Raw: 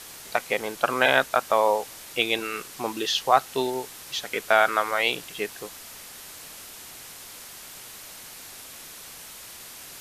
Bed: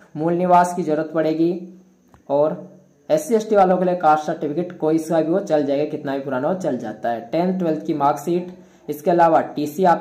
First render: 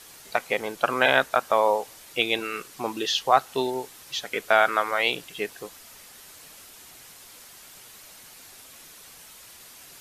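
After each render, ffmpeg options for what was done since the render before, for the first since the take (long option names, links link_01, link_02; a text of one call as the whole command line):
ffmpeg -i in.wav -af "afftdn=noise_reduction=6:noise_floor=-43" out.wav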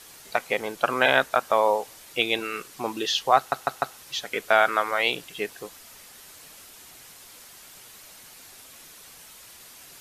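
ffmpeg -i in.wav -filter_complex "[0:a]asplit=5[link_01][link_02][link_03][link_04][link_05];[link_01]atrim=end=3.522[link_06];[link_02]atrim=start=3.368:end=3.522[link_07];[link_03]atrim=start=3.368:end=3.522[link_08];[link_04]atrim=start=3.368:end=3.522[link_09];[link_05]atrim=start=3.968[link_10];[link_06][link_07]acrossfade=duration=0.004:curve1=hsin:curve2=hsin[link_11];[link_11][link_08]acrossfade=duration=0.004:curve1=hsin:curve2=hsin[link_12];[link_12][link_09]acrossfade=duration=0.004:curve1=hsin:curve2=hsin[link_13];[link_13][link_10]acrossfade=duration=0.004:curve1=hsin:curve2=hsin" out.wav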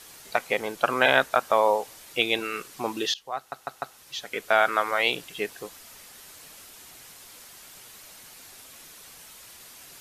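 ffmpeg -i in.wav -filter_complex "[0:a]asplit=2[link_01][link_02];[link_01]atrim=end=3.14,asetpts=PTS-STARTPTS,afade=type=out:start_time=3.136:duration=0.004:curve=hsin:silence=0.1[link_03];[link_02]atrim=start=3.14,asetpts=PTS-STARTPTS,afade=type=in:duration=1.76:silence=0.1[link_04];[link_03][link_04]concat=n=2:v=0:a=1" out.wav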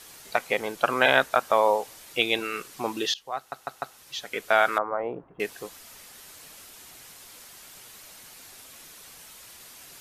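ffmpeg -i in.wav -filter_complex "[0:a]asettb=1/sr,asplit=3[link_01][link_02][link_03];[link_01]atrim=end=4.784[link_04];[link_02]atrim=start=4.78:end=5.4,asetpts=PTS-STARTPTS,afade=type=in:duration=0.004:curve=qsin,afade=type=out:start_time=0.616:duration=0.004:curve=qsin,lowpass=frequency=1100:width=0.5412,lowpass=frequency=1100:width=1.3066[link_05];[link_03]atrim=start=5.396[link_06];[link_04][link_05]acrossfade=duration=0.004:curve1=hsin:curve2=qsin[link_07];[link_07][link_06]acrossfade=duration=0.004:curve1=qsin:curve2=hsin" out.wav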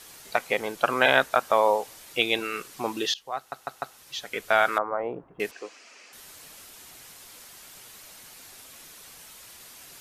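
ffmpeg -i in.wav -filter_complex "[0:a]asettb=1/sr,asplit=3[link_01][link_02][link_03];[link_01]atrim=end=4.164[link_04];[link_02]atrim=start=4.16:end=4.65,asetpts=PTS-STARTPTS,afade=type=in:duration=0.004:curve=qsin,afade=type=out:start_time=0.486:duration=0.004:curve=qsin,asubboost=boost=11:cutoff=180[link_05];[link_03]atrim=start=4.646[link_06];[link_04][link_05]acrossfade=duration=0.004:curve1=hsin:curve2=qsin[link_07];[link_07][link_06]acrossfade=duration=0.004:curve1=qsin:curve2=hsin,asettb=1/sr,asplit=3[link_08][link_09][link_10];[link_08]atrim=end=5.514[link_11];[link_09]atrim=start=5.51:end=6.13,asetpts=PTS-STARTPTS,afade=type=in:duration=0.004:curve=qsin,afade=type=out:start_time=0.616:duration=0.004:curve=qsin,highpass=frequency=270:width=0.5412,highpass=frequency=270:width=1.3066,equalizer=frequency=890:width_type=q:width=4:gain=-4,equalizer=frequency=2500:width_type=q:width=4:gain=7,equalizer=frequency=3600:width_type=q:width=4:gain=-8,lowpass=frequency=6400:width=0.5412,lowpass=frequency=6400:width=1.3066[link_12];[link_10]atrim=start=6.126[link_13];[link_11][link_12]acrossfade=duration=0.004:curve1=hsin:curve2=qsin[link_14];[link_14][link_13]acrossfade=duration=0.004:curve1=qsin:curve2=hsin" out.wav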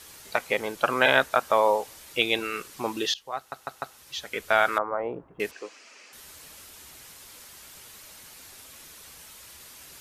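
ffmpeg -i in.wav -af "equalizer=frequency=71:width_type=o:width=0.51:gain=9,bandreject=frequency=720:width=15" out.wav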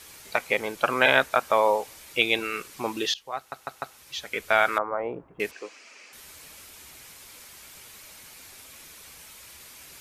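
ffmpeg -i in.wav -af "equalizer=frequency=2300:width=5.3:gain=4.5" out.wav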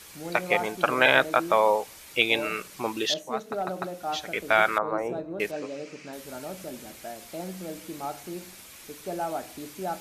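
ffmpeg -i in.wav -i bed.wav -filter_complex "[1:a]volume=-17dB[link_01];[0:a][link_01]amix=inputs=2:normalize=0" out.wav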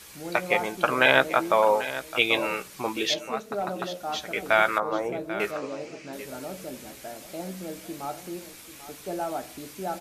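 ffmpeg -i in.wav -filter_complex "[0:a]asplit=2[link_01][link_02];[link_02]adelay=15,volume=-11dB[link_03];[link_01][link_03]amix=inputs=2:normalize=0,aecho=1:1:790:0.211" out.wav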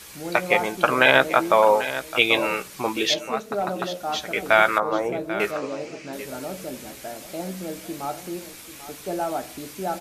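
ffmpeg -i in.wav -af "volume=4dB,alimiter=limit=-2dB:level=0:latency=1" out.wav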